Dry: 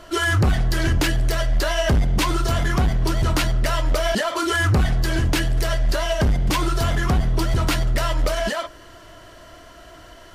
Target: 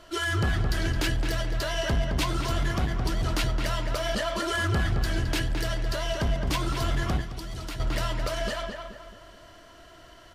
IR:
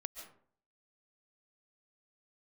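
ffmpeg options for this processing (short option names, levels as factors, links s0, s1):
-filter_complex "[0:a]equalizer=f=3800:t=o:w=1.5:g=3.5,asplit=2[s0][s1];[s1]adelay=216,lowpass=f=2300:p=1,volume=0.631,asplit=2[s2][s3];[s3]adelay=216,lowpass=f=2300:p=1,volume=0.45,asplit=2[s4][s5];[s5]adelay=216,lowpass=f=2300:p=1,volume=0.45,asplit=2[s6][s7];[s7]adelay=216,lowpass=f=2300:p=1,volume=0.45,asplit=2[s8][s9];[s9]adelay=216,lowpass=f=2300:p=1,volume=0.45,asplit=2[s10][s11];[s11]adelay=216,lowpass=f=2300:p=1,volume=0.45[s12];[s0][s2][s4][s6][s8][s10][s12]amix=inputs=7:normalize=0,asettb=1/sr,asplit=3[s13][s14][s15];[s13]atrim=end=7.214[s16];[s14]atrim=start=7.21:end=7.8,asetpts=PTS-STARTPTS,afade=t=in:d=0.004:c=qsin,afade=t=out:st=0.586:d=0.004:c=qsin,acrossover=split=2700|5600[s17][s18][s19];[s17]acompressor=threshold=0.0501:ratio=4[s20];[s18]acompressor=threshold=0.0112:ratio=4[s21];[s19]acompressor=threshold=0.01:ratio=4[s22];[s20][s21][s22]amix=inputs=3:normalize=0[s23];[s15]atrim=start=7.796[s24];[s16][s23]acrossfade=d=0.004:c1=hsin:c2=qsin[s25];[s25][s24]acrossfade=d=0.004:c1=qsin:c2=hsin,volume=0.376"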